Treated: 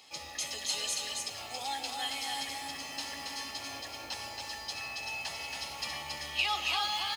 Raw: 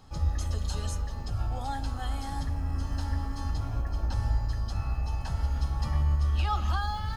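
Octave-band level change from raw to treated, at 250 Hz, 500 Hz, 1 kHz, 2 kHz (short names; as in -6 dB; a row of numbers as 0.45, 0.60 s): -11.0, -2.0, -1.5, +7.0 dB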